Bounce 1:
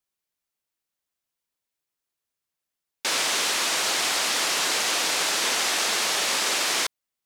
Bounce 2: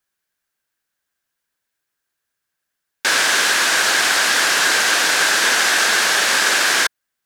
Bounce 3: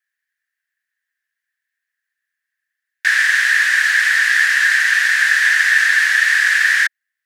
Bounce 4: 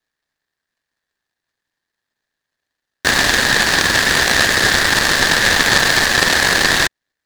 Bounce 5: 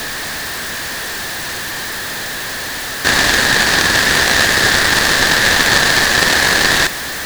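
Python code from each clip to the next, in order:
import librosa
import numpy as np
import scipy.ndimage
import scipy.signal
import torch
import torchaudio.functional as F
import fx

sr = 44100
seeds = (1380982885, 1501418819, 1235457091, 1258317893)

y1 = fx.peak_eq(x, sr, hz=1600.0, db=12.0, octaves=0.36)
y1 = y1 * librosa.db_to_amplitude(6.0)
y2 = fx.highpass_res(y1, sr, hz=1800.0, q=11.0)
y2 = y2 * librosa.db_to_amplitude(-9.0)
y3 = fx.noise_mod_delay(y2, sr, seeds[0], noise_hz=2200.0, depth_ms=0.081)
y4 = y3 + 0.5 * 10.0 ** (-16.0 / 20.0) * np.sign(y3)
y4 = y4 * librosa.db_to_amplitude(-1.0)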